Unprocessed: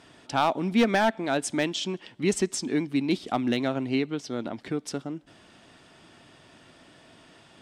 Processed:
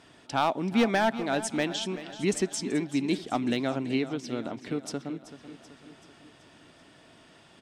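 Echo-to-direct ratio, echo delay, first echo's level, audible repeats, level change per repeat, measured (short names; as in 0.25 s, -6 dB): -12.5 dB, 0.382 s, -14.0 dB, 5, -5.0 dB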